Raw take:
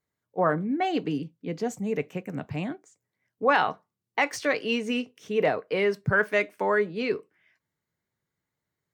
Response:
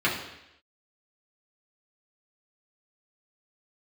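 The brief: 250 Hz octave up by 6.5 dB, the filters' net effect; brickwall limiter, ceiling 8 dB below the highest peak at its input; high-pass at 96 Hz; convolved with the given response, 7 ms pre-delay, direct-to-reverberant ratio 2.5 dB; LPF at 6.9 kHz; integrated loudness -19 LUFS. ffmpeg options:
-filter_complex "[0:a]highpass=96,lowpass=6900,equalizer=f=250:t=o:g=8,alimiter=limit=0.141:level=0:latency=1,asplit=2[s0][s1];[1:a]atrim=start_sample=2205,adelay=7[s2];[s1][s2]afir=irnorm=-1:irlink=0,volume=0.141[s3];[s0][s3]amix=inputs=2:normalize=0,volume=2.24"

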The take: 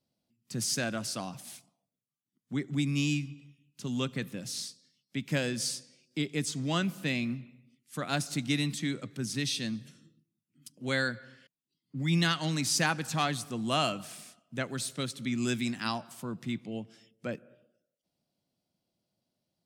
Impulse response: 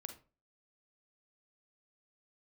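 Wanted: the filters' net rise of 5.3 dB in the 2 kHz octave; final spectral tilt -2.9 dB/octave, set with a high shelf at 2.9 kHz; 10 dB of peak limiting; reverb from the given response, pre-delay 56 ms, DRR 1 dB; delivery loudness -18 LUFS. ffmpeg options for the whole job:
-filter_complex "[0:a]equalizer=f=2000:t=o:g=3.5,highshelf=f=2900:g=8.5,alimiter=limit=0.141:level=0:latency=1,asplit=2[s0][s1];[1:a]atrim=start_sample=2205,adelay=56[s2];[s1][s2]afir=irnorm=-1:irlink=0,volume=1.5[s3];[s0][s3]amix=inputs=2:normalize=0,volume=3.16"

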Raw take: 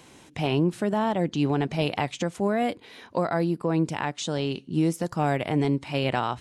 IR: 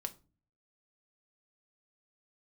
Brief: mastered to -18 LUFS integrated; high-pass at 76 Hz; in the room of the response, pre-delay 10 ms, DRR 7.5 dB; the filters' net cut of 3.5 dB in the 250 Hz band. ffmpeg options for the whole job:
-filter_complex "[0:a]highpass=76,equalizer=f=250:t=o:g=-5,asplit=2[s0][s1];[1:a]atrim=start_sample=2205,adelay=10[s2];[s1][s2]afir=irnorm=-1:irlink=0,volume=0.501[s3];[s0][s3]amix=inputs=2:normalize=0,volume=2.99"

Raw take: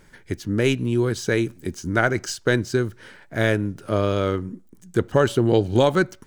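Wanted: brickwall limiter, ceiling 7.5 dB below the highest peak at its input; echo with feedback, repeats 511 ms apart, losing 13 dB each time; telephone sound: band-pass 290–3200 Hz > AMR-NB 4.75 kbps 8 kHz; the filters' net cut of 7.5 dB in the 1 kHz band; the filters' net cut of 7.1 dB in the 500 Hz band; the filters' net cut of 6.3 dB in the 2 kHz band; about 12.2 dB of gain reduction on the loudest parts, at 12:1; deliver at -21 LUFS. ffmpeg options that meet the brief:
-af "equalizer=f=500:t=o:g=-6.5,equalizer=f=1000:t=o:g=-7,equalizer=f=2000:t=o:g=-4.5,acompressor=threshold=0.0355:ratio=12,alimiter=level_in=1.33:limit=0.0631:level=0:latency=1,volume=0.75,highpass=290,lowpass=3200,aecho=1:1:511|1022|1533:0.224|0.0493|0.0108,volume=13.3" -ar 8000 -c:a libopencore_amrnb -b:a 4750

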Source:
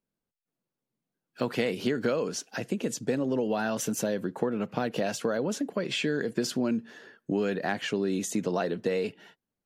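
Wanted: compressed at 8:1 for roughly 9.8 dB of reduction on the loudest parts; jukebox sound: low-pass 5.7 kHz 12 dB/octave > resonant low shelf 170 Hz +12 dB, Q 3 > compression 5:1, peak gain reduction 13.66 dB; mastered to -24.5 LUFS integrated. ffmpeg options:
-af "acompressor=threshold=0.0224:ratio=8,lowpass=5700,lowshelf=f=170:t=q:w=3:g=12,acompressor=threshold=0.01:ratio=5,volume=9.44"

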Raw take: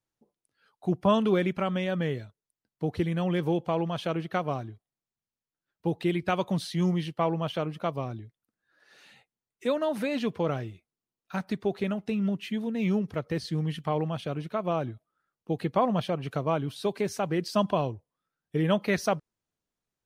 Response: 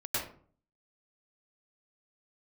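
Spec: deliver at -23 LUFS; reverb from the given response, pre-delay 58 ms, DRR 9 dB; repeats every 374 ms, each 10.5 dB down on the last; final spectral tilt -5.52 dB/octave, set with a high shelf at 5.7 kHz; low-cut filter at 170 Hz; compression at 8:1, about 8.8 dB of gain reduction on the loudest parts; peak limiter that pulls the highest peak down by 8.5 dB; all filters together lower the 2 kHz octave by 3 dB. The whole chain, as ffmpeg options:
-filter_complex "[0:a]highpass=170,equalizer=f=2000:t=o:g=-4.5,highshelf=f=5700:g=5,acompressor=threshold=0.0398:ratio=8,alimiter=level_in=1.12:limit=0.0631:level=0:latency=1,volume=0.891,aecho=1:1:374|748|1122:0.299|0.0896|0.0269,asplit=2[s0][s1];[1:a]atrim=start_sample=2205,adelay=58[s2];[s1][s2]afir=irnorm=-1:irlink=0,volume=0.178[s3];[s0][s3]amix=inputs=2:normalize=0,volume=4.47"

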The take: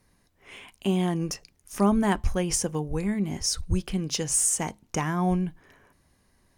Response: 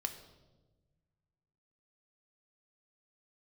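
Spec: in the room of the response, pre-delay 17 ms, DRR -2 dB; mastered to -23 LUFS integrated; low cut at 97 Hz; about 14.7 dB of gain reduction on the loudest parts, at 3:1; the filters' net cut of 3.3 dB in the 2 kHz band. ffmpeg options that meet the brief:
-filter_complex "[0:a]highpass=97,equalizer=f=2000:t=o:g=-4,acompressor=threshold=0.0112:ratio=3,asplit=2[s0][s1];[1:a]atrim=start_sample=2205,adelay=17[s2];[s1][s2]afir=irnorm=-1:irlink=0,volume=1.26[s3];[s0][s3]amix=inputs=2:normalize=0,volume=3.98"

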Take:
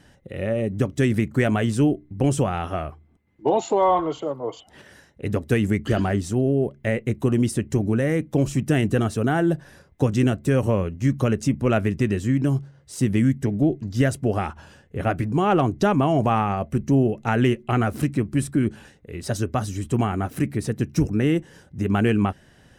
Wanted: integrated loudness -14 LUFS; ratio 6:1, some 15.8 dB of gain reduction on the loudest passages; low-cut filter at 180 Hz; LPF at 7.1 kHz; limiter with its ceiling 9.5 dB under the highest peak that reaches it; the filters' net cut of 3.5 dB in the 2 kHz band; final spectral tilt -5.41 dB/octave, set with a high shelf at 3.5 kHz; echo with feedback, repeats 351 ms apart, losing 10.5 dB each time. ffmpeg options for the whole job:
-af "highpass=180,lowpass=7100,equalizer=f=2000:t=o:g=-6.5,highshelf=f=3500:g=6.5,acompressor=threshold=0.02:ratio=6,alimiter=level_in=1.68:limit=0.0631:level=0:latency=1,volume=0.596,aecho=1:1:351|702|1053:0.299|0.0896|0.0269,volume=18.8"

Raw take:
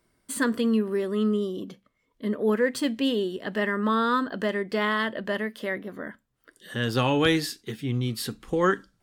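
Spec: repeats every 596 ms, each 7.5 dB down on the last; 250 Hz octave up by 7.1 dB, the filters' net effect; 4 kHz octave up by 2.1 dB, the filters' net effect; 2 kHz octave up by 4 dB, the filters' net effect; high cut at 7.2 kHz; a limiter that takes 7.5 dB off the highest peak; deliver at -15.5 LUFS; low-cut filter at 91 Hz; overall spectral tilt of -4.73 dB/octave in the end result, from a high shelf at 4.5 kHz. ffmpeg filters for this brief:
-af "highpass=91,lowpass=7200,equalizer=f=250:t=o:g=8.5,equalizer=f=2000:t=o:g=5,equalizer=f=4000:t=o:g=3.5,highshelf=f=4500:g=-5.5,alimiter=limit=0.224:level=0:latency=1,aecho=1:1:596|1192|1788|2384|2980:0.422|0.177|0.0744|0.0312|0.0131,volume=2.37"

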